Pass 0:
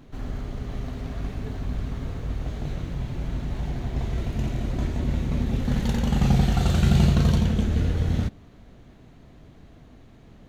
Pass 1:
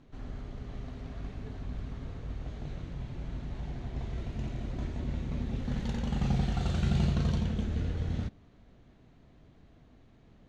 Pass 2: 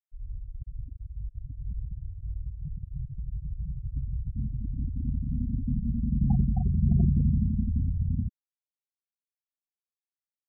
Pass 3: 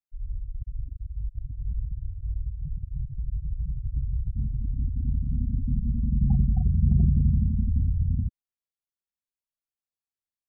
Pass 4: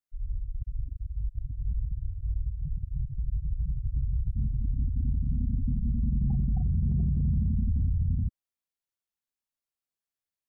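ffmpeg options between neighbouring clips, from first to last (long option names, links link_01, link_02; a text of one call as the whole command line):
ffmpeg -i in.wav -af "lowpass=6700,volume=-9dB" out.wav
ffmpeg -i in.wav -af "afftfilt=real='re*gte(hypot(re,im),0.0794)':imag='im*gte(hypot(re,im),0.0794)':win_size=1024:overlap=0.75,volume=5dB" out.wav
ffmpeg -i in.wav -af "lowshelf=frequency=150:gain=11.5,volume=-5.5dB" out.wav
ffmpeg -i in.wav -af "alimiter=limit=-20.5dB:level=0:latency=1:release=16" out.wav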